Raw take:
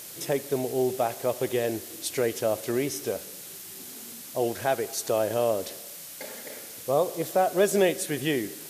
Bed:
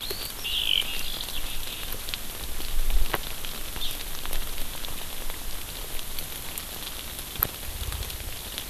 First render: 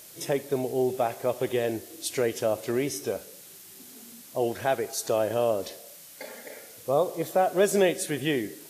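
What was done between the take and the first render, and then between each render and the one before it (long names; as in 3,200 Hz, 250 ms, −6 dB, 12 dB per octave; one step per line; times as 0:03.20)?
noise reduction from a noise print 6 dB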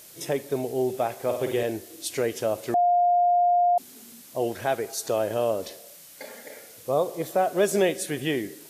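0:01.16–0:01.63: flutter between parallel walls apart 8.8 metres, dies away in 0.52 s
0:02.74–0:03.78: beep over 706 Hz −17 dBFS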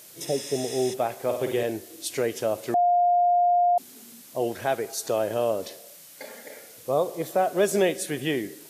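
high-pass filter 87 Hz
0:00.30–0:00.91: healed spectral selection 840–10,000 Hz before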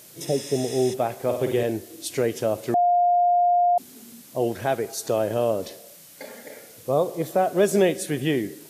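low-shelf EQ 310 Hz +8 dB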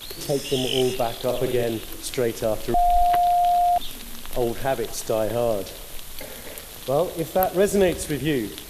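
mix in bed −4 dB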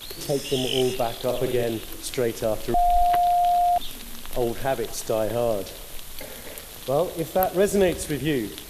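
level −1 dB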